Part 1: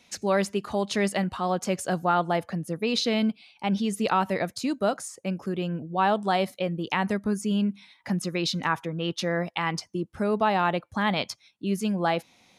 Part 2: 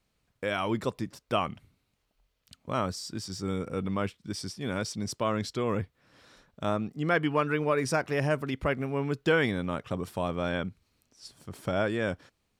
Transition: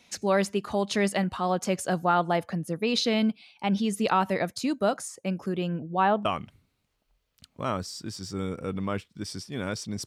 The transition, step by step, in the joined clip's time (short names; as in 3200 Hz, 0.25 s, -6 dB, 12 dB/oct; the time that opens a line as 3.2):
part 1
5.73–6.25 LPF 10000 Hz -> 1500 Hz
6.25 switch to part 2 from 1.34 s